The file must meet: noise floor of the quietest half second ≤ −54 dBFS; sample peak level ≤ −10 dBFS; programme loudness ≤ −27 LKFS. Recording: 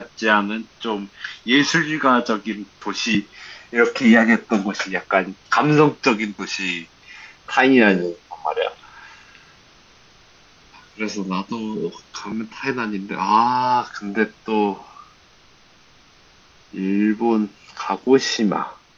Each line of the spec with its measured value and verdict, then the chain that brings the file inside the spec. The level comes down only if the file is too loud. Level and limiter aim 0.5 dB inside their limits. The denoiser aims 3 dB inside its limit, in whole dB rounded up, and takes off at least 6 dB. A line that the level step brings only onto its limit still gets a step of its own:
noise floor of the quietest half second −52 dBFS: out of spec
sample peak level −3.0 dBFS: out of spec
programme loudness −20.0 LKFS: out of spec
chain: level −7.5 dB

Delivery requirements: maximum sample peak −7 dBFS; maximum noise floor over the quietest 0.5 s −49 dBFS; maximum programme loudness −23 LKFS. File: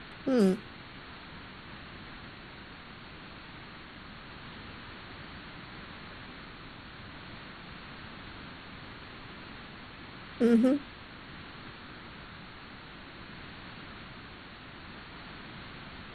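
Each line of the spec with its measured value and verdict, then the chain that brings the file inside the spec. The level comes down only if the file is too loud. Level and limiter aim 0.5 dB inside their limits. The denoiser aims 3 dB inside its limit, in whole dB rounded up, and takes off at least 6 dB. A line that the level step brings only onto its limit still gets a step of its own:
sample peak −13.5 dBFS: in spec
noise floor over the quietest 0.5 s −48 dBFS: out of spec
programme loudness −37.5 LKFS: in spec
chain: broadband denoise 6 dB, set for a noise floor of −48 dBFS

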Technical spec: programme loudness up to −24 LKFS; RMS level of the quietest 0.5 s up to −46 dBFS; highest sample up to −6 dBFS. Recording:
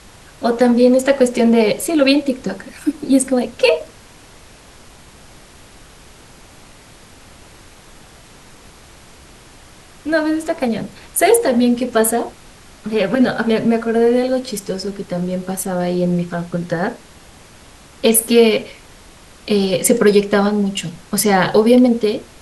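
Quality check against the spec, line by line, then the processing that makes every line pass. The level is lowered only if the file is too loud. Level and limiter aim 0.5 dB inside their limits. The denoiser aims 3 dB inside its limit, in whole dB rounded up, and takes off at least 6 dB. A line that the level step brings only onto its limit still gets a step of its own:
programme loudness −16.0 LKFS: out of spec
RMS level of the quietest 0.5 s −43 dBFS: out of spec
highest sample −1.5 dBFS: out of spec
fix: level −8.5 dB

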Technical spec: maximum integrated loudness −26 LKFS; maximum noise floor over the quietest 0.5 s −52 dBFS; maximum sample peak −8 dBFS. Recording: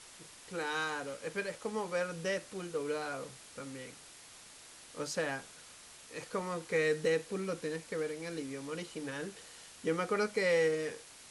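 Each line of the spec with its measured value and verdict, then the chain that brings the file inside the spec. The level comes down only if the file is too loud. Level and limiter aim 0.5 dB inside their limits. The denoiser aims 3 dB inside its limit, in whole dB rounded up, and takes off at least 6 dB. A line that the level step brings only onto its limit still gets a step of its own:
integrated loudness −36.0 LKFS: in spec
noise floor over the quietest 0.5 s −54 dBFS: in spec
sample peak −19.5 dBFS: in spec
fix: no processing needed

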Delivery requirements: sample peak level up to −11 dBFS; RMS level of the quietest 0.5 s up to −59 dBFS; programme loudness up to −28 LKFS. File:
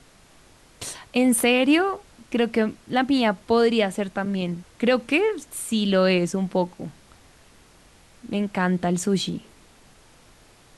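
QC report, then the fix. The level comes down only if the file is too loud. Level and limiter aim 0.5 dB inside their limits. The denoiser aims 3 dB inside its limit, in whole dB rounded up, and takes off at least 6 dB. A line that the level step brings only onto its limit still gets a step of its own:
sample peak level −7.5 dBFS: out of spec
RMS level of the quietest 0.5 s −53 dBFS: out of spec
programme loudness −22.5 LKFS: out of spec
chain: broadband denoise 6 dB, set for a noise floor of −53 dBFS
level −6 dB

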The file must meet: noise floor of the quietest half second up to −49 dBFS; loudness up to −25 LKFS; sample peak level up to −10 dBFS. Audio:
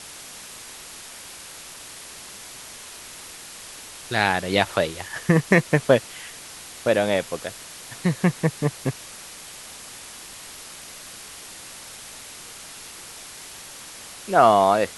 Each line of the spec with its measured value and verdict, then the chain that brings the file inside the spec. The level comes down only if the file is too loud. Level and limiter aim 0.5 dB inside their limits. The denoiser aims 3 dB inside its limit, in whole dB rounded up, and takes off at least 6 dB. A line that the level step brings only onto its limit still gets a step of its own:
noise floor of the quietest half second −41 dBFS: out of spec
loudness −21.5 LKFS: out of spec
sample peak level −3.0 dBFS: out of spec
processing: broadband denoise 7 dB, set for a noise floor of −41 dBFS
level −4 dB
brickwall limiter −10.5 dBFS

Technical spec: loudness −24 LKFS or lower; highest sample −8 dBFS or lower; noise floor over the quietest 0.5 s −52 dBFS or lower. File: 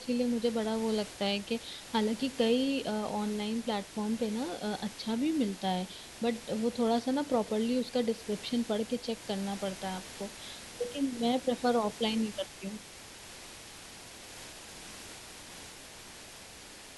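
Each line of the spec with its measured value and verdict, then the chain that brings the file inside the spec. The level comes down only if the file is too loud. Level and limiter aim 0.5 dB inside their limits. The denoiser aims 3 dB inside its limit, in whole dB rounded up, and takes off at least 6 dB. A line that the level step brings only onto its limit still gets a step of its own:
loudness −32.5 LKFS: in spec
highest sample −16.5 dBFS: in spec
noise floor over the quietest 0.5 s −49 dBFS: out of spec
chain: broadband denoise 6 dB, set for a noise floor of −49 dBFS

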